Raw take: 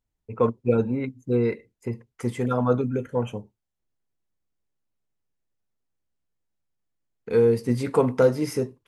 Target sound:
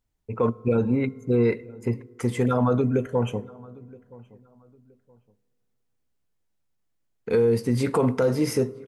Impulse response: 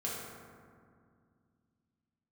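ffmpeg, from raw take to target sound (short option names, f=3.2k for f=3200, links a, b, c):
-filter_complex "[0:a]alimiter=limit=-17dB:level=0:latency=1:release=38,asplit=2[a][b];[b]adelay=971,lowpass=f=1.7k:p=1,volume=-22.5dB,asplit=2[c][d];[d]adelay=971,lowpass=f=1.7k:p=1,volume=0.28[e];[a][c][e]amix=inputs=3:normalize=0,asplit=2[f][g];[1:a]atrim=start_sample=2205,asetrate=41895,aresample=44100[h];[g][h]afir=irnorm=-1:irlink=0,volume=-25dB[i];[f][i]amix=inputs=2:normalize=0,volume=3.5dB"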